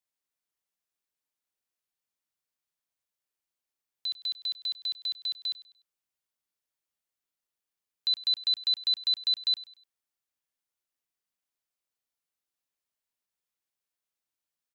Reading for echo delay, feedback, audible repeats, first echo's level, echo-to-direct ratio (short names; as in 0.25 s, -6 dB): 99 ms, 36%, 2, -18.5 dB, -18.0 dB